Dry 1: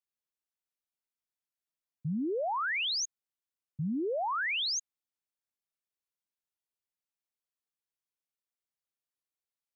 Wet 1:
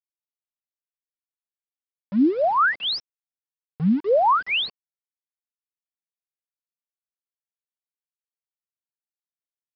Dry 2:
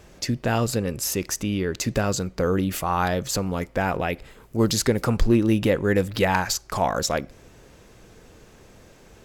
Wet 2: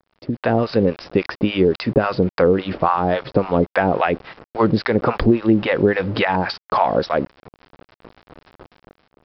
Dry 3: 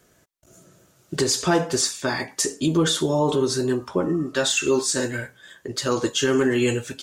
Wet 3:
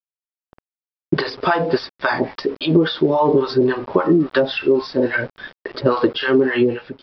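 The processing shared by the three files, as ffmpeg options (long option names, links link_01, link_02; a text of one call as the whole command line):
ffmpeg -i in.wav -filter_complex "[0:a]acrossover=split=700[link_01][link_02];[link_01]aeval=exprs='val(0)*(1-1/2+1/2*cos(2*PI*3.6*n/s))':channel_layout=same[link_03];[link_02]aeval=exprs='val(0)*(1-1/2-1/2*cos(2*PI*3.6*n/s))':channel_layout=same[link_04];[link_03][link_04]amix=inputs=2:normalize=0,highpass=frequency=390:poles=1,acompressor=threshold=-32dB:ratio=12,aresample=11025,aeval=exprs='val(0)*gte(abs(val(0)),0.00251)':channel_layout=same,aresample=44100,lowpass=frequency=1000:poles=1,dynaudnorm=framelen=110:gausssize=7:maxgain=15.5dB,volume=6.5dB" out.wav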